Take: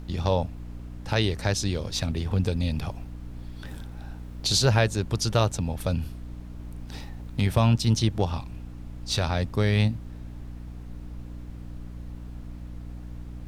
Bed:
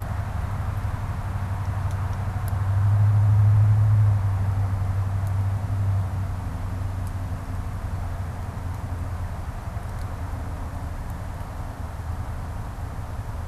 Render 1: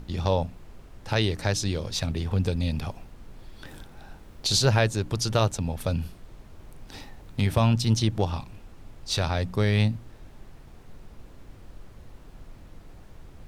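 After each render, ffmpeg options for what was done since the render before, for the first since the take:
-af "bandreject=f=60:t=h:w=4,bandreject=f=120:t=h:w=4,bandreject=f=180:t=h:w=4,bandreject=f=240:t=h:w=4,bandreject=f=300:t=h:w=4"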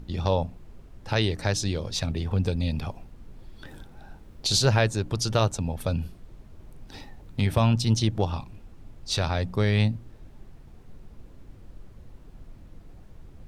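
-af "afftdn=nr=6:nf=-49"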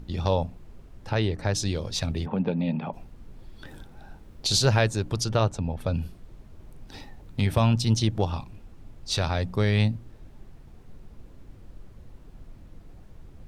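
-filter_complex "[0:a]asettb=1/sr,asplit=3[a][b][c];[a]atrim=end=1.094[d];[b]atrim=start=1.09:end=1.55,asetpts=PTS-STARTPTS,afade=t=in:d=0.004:c=qsin,afade=t=out:st=0.456:d=0.004:c=qsin,highshelf=f=3.1k:g=-11.5[e];[c]atrim=start=1.546[f];[d][e]acrossfade=d=0.004:c1=hsin:c2=qsin[g];[g][f]acrossfade=d=0.004:c1=qsin:c2=hsin,asplit=3[h][i][j];[h]afade=t=out:st=2.25:d=0.02[k];[i]highpass=f=160:w=0.5412,highpass=f=160:w=1.3066,equalizer=f=170:t=q:w=4:g=7,equalizer=f=240:t=q:w=4:g=5,equalizer=f=590:t=q:w=4:g=5,equalizer=f=880:t=q:w=4:g=7,lowpass=f=2.9k:w=0.5412,lowpass=f=2.9k:w=1.3066,afade=t=in:st=2.25:d=0.02,afade=t=out:st=2.92:d=0.02[l];[j]afade=t=in:st=2.92:d=0.02[m];[k][l][m]amix=inputs=3:normalize=0,asettb=1/sr,asplit=3[n][o][p];[n]atrim=end=5.244[q];[o]atrim=start=5.24:end=5.94,asetpts=PTS-STARTPTS,afade=t=in:d=0.004:c=qsin,afade=t=out:st=0.696:d=0.004:c=qsin,lowpass=f=2.7k:p=1[r];[p]atrim=start=5.936[s];[q][r]acrossfade=d=0.004:c1=hsin:c2=qsin[t];[t][s]acrossfade=d=0.004:c1=qsin:c2=hsin"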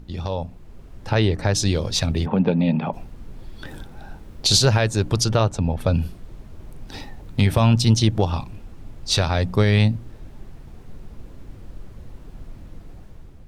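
-af "alimiter=limit=-13.5dB:level=0:latency=1:release=200,dynaudnorm=f=310:g=5:m=7.5dB"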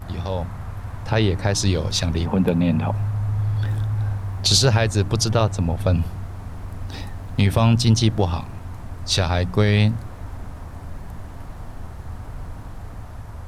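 -filter_complex "[1:a]volume=-5dB[a];[0:a][a]amix=inputs=2:normalize=0"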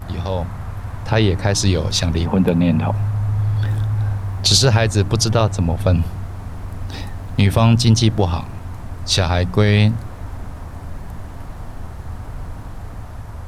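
-af "volume=3.5dB,alimiter=limit=-3dB:level=0:latency=1"

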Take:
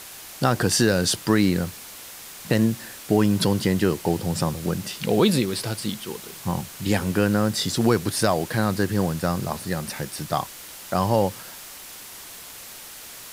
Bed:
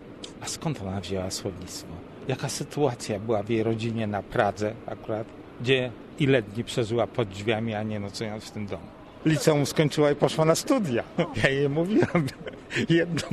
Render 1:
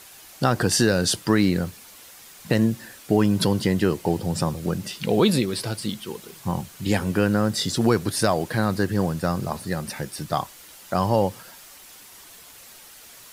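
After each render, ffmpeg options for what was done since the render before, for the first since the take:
-af "afftdn=nr=7:nf=-41"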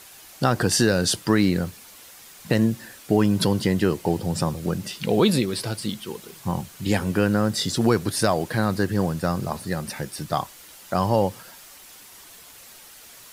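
-af anull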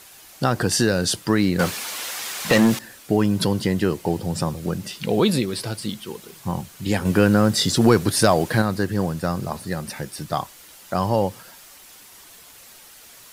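-filter_complex "[0:a]asettb=1/sr,asplit=3[a][b][c];[a]atrim=end=1.594[d];[b]atrim=start=1.59:end=2.79,asetpts=PTS-STARTPTS,afade=t=in:d=0.004:c=qsin,afade=t=out:st=1.196:d=0.004:c=qsin,asplit=2[e][f];[f]highpass=f=720:p=1,volume=25dB,asoftclip=type=tanh:threshold=-6.5dB[g];[e][g]amix=inputs=2:normalize=0,lowpass=f=5.7k:p=1,volume=-6dB[h];[c]atrim=start=2.786[i];[d][h]acrossfade=d=0.004:c1=hsin:c2=qsin[j];[j][i]acrossfade=d=0.004:c1=qsin:c2=hsin,asettb=1/sr,asplit=3[k][l][m];[k]atrim=end=7.054[n];[l]atrim=start=7.05:end=8.62,asetpts=PTS-STARTPTS,afade=t=in:d=0.004:c=qsin,afade=t=out:st=1.566:d=0.004:c=qsin,acontrast=25[o];[m]atrim=start=8.616[p];[n][o]acrossfade=d=0.004:c1=hsin:c2=qsin[q];[q][p]acrossfade=d=0.004:c1=qsin:c2=hsin"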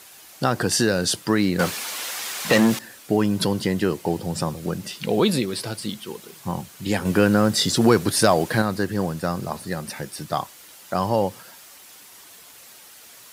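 -af "highpass=f=130:p=1"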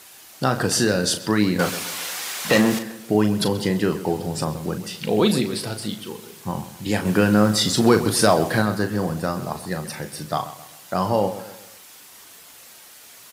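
-filter_complex "[0:a]asplit=2[a][b];[b]adelay=38,volume=-8.5dB[c];[a][c]amix=inputs=2:normalize=0,asplit=2[d][e];[e]adelay=131,lowpass=f=3.5k:p=1,volume=-13.5dB,asplit=2[f][g];[g]adelay=131,lowpass=f=3.5k:p=1,volume=0.43,asplit=2[h][i];[i]adelay=131,lowpass=f=3.5k:p=1,volume=0.43,asplit=2[j][k];[k]adelay=131,lowpass=f=3.5k:p=1,volume=0.43[l];[d][f][h][j][l]amix=inputs=5:normalize=0"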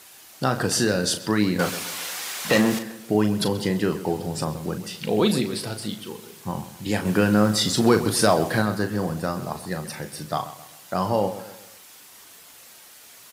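-af "volume=-2dB"

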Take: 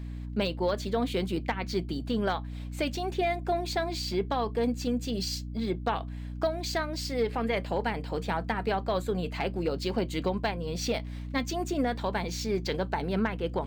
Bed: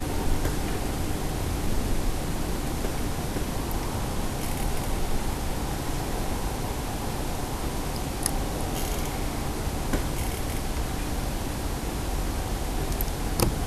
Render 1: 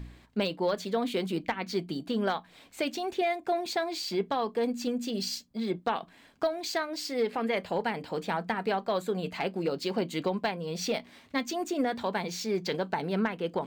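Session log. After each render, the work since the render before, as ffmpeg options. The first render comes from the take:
-af "bandreject=f=60:t=h:w=4,bandreject=f=120:t=h:w=4,bandreject=f=180:t=h:w=4,bandreject=f=240:t=h:w=4,bandreject=f=300:t=h:w=4"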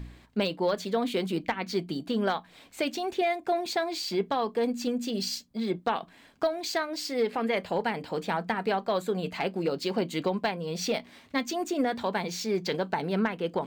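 -af "volume=1.5dB"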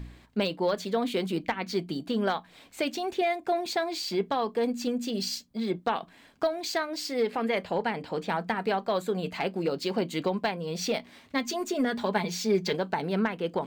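-filter_complex "[0:a]asettb=1/sr,asplit=3[a][b][c];[a]atrim=end=7.634[d];[b]atrim=start=7.63:end=8.3,asetpts=PTS-STARTPTS,afade=t=in:d=0.004:c=qsin,afade=t=out:st=0.666:d=0.004:c=qsin,highshelf=f=8.2k:g=-8[e];[c]atrim=start=8.296[f];[d][e]acrossfade=d=0.004:c1=hsin:c2=qsin[g];[g][f]acrossfade=d=0.004:c1=qsin:c2=hsin,asettb=1/sr,asplit=3[h][i][j];[h]atrim=end=11.434[k];[i]atrim=start=11.43:end=12.73,asetpts=PTS-STARTPTS,afade=t=in:d=0.004:c=qsin,afade=t=out:st=1.296:d=0.004:c=qsin,aecho=1:1:4.8:0.65,atrim=end_sample=57330[l];[j]atrim=start=12.726[m];[k][l]acrossfade=d=0.004:c1=hsin:c2=qsin[n];[n][m]acrossfade=d=0.004:c1=qsin:c2=hsin"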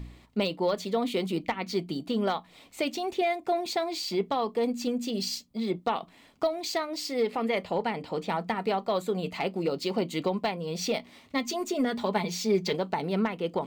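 -af "bandreject=f=1.6k:w=5.2"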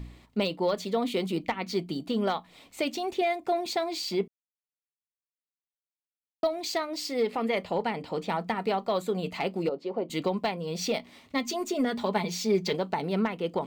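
-filter_complex "[0:a]asettb=1/sr,asplit=3[a][b][c];[a]atrim=end=9.694[d];[b]atrim=start=9.69:end=10.1,asetpts=PTS-STARTPTS,afade=t=in:d=0.004:c=qsin,afade=t=out:st=0.406:d=0.004:c=qsin,bandpass=f=550:t=q:w=1.1[e];[c]atrim=start=10.096[f];[d][e]acrossfade=d=0.004:c1=hsin:c2=qsin[g];[g][f]acrossfade=d=0.004:c1=qsin:c2=hsin,asplit=3[h][i][j];[h]atrim=end=4.28,asetpts=PTS-STARTPTS,afade=t=out:st=4.276:d=0.004:c=hsin[k];[i]atrim=start=4.28:end=6.43,asetpts=PTS-STARTPTS,volume=0[l];[j]atrim=start=6.43,asetpts=PTS-STARTPTS,afade=t=in:d=0.004:c=hsin[m];[k][l][m]concat=n=3:v=0:a=1"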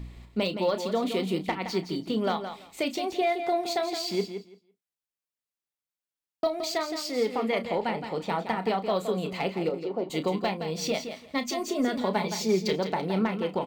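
-filter_complex "[0:a]asplit=2[a][b];[b]adelay=32,volume=-11dB[c];[a][c]amix=inputs=2:normalize=0,asplit=2[d][e];[e]aecho=0:1:168|336|504:0.355|0.0603|0.0103[f];[d][f]amix=inputs=2:normalize=0"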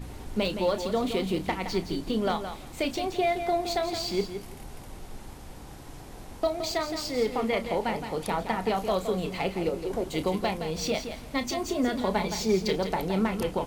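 -filter_complex "[1:a]volume=-15dB[a];[0:a][a]amix=inputs=2:normalize=0"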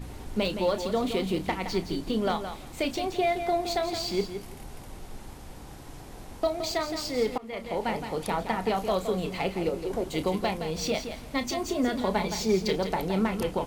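-filter_complex "[0:a]asplit=2[a][b];[a]atrim=end=7.38,asetpts=PTS-STARTPTS,afade=t=out:st=7.376:d=0.004:c=hsin:silence=0.0668344[c];[b]atrim=start=7.38,asetpts=PTS-STARTPTS,afade=t=in:d=0.51:silence=0.0668344[d];[c][d]concat=n=2:v=0:a=1"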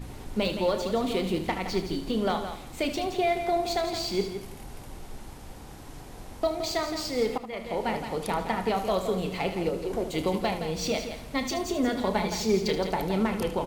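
-af "aecho=1:1:76:0.299"

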